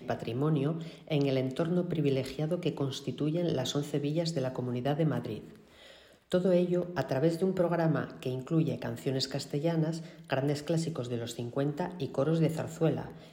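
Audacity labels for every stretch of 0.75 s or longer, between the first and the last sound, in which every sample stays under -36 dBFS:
5.390000	6.320000	silence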